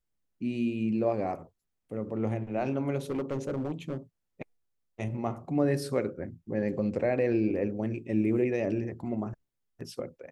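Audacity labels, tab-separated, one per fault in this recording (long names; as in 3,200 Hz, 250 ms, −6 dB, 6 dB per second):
3.100000	3.970000	clipping −27 dBFS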